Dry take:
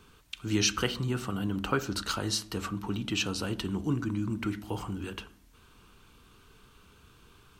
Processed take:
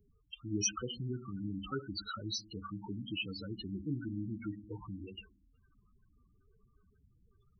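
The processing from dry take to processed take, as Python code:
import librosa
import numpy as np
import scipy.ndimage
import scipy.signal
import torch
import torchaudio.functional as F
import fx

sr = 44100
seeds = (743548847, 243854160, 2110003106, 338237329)

y = fx.spec_topn(x, sr, count=8)
y = F.preemphasis(torch.from_numpy(y), 0.8).numpy()
y = y * librosa.db_to_amplitude(6.5)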